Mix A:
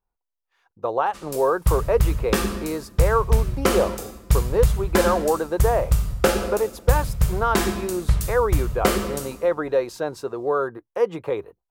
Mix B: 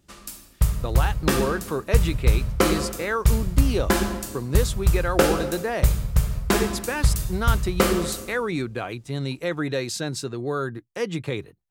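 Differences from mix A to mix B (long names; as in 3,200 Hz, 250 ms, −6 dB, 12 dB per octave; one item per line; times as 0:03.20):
speech: add octave-band graphic EQ 125/250/500/1,000/2,000/4,000/8,000 Hz +10/+6/−8/−9/+5/+8/+11 dB
background: entry −1.05 s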